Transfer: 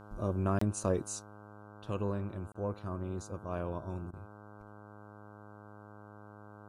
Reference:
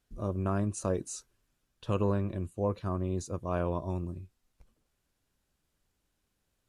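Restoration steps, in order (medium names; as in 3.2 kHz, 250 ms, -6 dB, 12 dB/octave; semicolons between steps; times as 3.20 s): de-hum 104.1 Hz, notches 15; interpolate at 0.59/2.52 s, 24 ms; interpolate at 2.53/4.11 s, 21 ms; trim 0 dB, from 1.19 s +6 dB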